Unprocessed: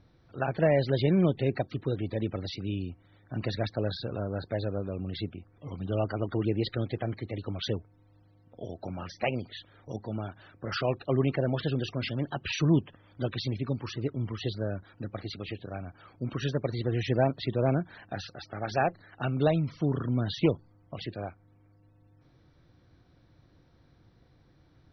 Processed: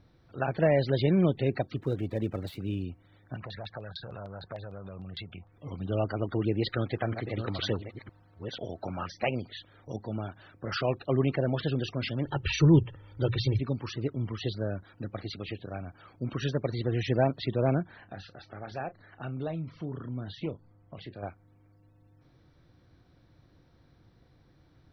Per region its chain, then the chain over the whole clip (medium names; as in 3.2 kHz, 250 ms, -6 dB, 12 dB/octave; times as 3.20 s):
1.76–2.85 s: dead-time distortion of 0.068 ms + treble shelf 4.5 kHz -10.5 dB
3.35–5.52 s: FFT filter 190 Hz 0 dB, 270 Hz -9 dB, 760 Hz +2 dB + compression, threshold -38 dBFS + LFO low-pass saw down 6.6 Hz 700–4000 Hz
6.62–9.06 s: chunks repeated in reverse 491 ms, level -8 dB + peaking EQ 1.3 kHz +8 dB 1.5 oct
12.25–13.60 s: bass shelf 180 Hz +11 dB + hum notches 60/120/180 Hz + comb 2.2 ms, depth 59%
17.83–21.23 s: compression 1.5:1, threshold -47 dBFS + distance through air 160 m + doubling 31 ms -13 dB
whole clip: none